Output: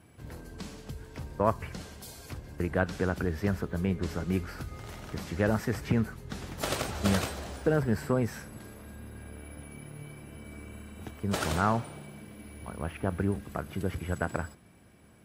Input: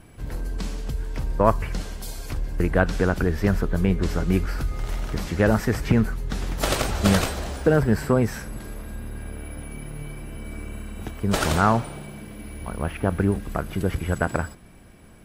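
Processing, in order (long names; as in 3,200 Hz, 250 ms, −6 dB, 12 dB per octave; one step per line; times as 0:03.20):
high-pass filter 65 Hz 24 dB per octave
level −7.5 dB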